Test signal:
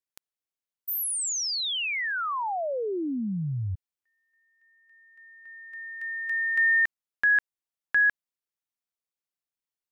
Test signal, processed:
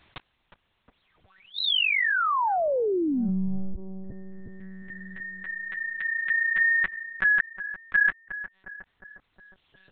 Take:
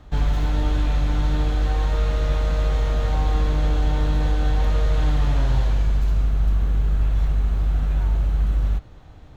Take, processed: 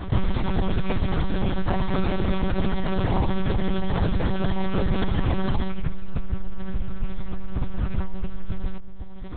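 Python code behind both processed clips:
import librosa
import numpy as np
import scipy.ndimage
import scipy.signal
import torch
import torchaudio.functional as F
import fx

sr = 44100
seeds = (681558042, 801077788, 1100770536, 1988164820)

y = fx.dereverb_blind(x, sr, rt60_s=1.9)
y = fx.echo_filtered(y, sr, ms=360, feedback_pct=51, hz=890.0, wet_db=-21.0)
y = fx.lpc_monotone(y, sr, seeds[0], pitch_hz=190.0, order=8)
y = fx.env_flatten(y, sr, amount_pct=50)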